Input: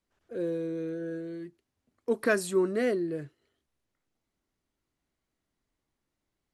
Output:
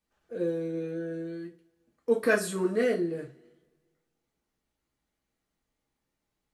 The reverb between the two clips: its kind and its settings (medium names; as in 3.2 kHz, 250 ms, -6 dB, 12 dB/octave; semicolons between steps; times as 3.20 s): two-slope reverb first 0.27 s, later 1.6 s, from -27 dB, DRR -2 dB; trim -2.5 dB